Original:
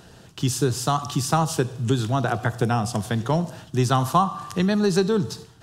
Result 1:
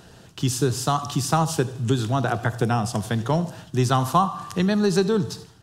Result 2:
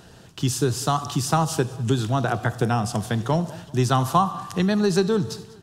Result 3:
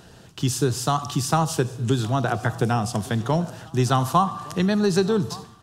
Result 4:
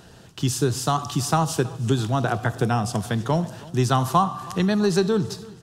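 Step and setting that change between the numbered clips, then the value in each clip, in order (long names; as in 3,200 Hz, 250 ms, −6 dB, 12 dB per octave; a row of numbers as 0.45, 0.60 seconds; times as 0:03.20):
repeating echo, delay time: 81, 195, 1,164, 324 milliseconds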